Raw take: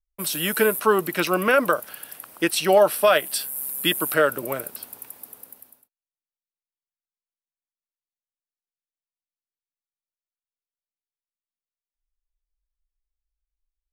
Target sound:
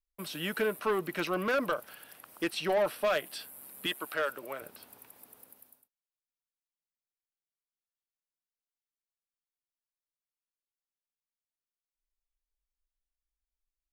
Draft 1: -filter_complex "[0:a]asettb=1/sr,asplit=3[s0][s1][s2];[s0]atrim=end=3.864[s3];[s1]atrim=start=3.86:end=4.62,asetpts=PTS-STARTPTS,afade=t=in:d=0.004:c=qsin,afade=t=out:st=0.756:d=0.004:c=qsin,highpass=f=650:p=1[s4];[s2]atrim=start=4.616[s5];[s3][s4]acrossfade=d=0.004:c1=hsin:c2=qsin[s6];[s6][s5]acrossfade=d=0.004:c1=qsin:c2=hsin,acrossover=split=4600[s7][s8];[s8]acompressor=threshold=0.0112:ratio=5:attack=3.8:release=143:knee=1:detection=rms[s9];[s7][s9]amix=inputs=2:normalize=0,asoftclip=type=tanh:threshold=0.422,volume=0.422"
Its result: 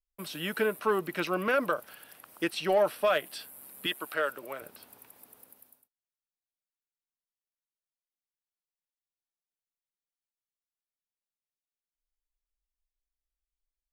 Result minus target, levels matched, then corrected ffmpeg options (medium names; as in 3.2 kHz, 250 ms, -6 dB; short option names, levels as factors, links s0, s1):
saturation: distortion -10 dB
-filter_complex "[0:a]asettb=1/sr,asplit=3[s0][s1][s2];[s0]atrim=end=3.864[s3];[s1]atrim=start=3.86:end=4.62,asetpts=PTS-STARTPTS,afade=t=in:d=0.004:c=qsin,afade=t=out:st=0.756:d=0.004:c=qsin,highpass=f=650:p=1[s4];[s2]atrim=start=4.616[s5];[s3][s4]acrossfade=d=0.004:c1=hsin:c2=qsin[s6];[s6][s5]acrossfade=d=0.004:c1=qsin:c2=hsin,acrossover=split=4600[s7][s8];[s8]acompressor=threshold=0.0112:ratio=5:attack=3.8:release=143:knee=1:detection=rms[s9];[s7][s9]amix=inputs=2:normalize=0,asoftclip=type=tanh:threshold=0.178,volume=0.422"